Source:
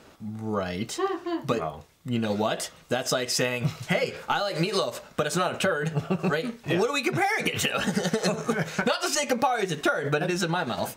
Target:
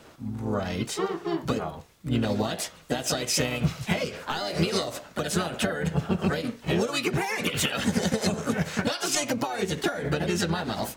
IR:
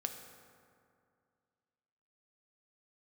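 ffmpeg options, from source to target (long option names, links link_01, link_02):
-filter_complex "[0:a]acrossover=split=360|3000[link_01][link_02][link_03];[link_02]acompressor=threshold=-30dB:ratio=10[link_04];[link_01][link_04][link_03]amix=inputs=3:normalize=0,asplit=3[link_05][link_06][link_07];[link_06]asetrate=22050,aresample=44100,atempo=2,volume=-11dB[link_08];[link_07]asetrate=52444,aresample=44100,atempo=0.840896,volume=-5dB[link_09];[link_05][link_08][link_09]amix=inputs=3:normalize=0"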